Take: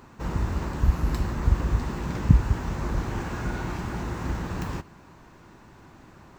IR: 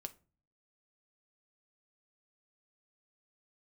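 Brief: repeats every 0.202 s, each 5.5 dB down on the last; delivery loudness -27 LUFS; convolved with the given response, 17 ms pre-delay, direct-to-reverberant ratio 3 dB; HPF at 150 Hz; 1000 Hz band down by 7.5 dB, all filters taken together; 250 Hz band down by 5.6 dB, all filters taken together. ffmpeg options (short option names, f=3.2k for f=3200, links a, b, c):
-filter_complex "[0:a]highpass=150,equalizer=f=250:t=o:g=-6,equalizer=f=1k:t=o:g=-9,aecho=1:1:202|404|606|808|1010|1212|1414:0.531|0.281|0.149|0.079|0.0419|0.0222|0.0118,asplit=2[a][b];[1:a]atrim=start_sample=2205,adelay=17[c];[b][c]afir=irnorm=-1:irlink=0,volume=1dB[d];[a][d]amix=inputs=2:normalize=0,volume=5.5dB"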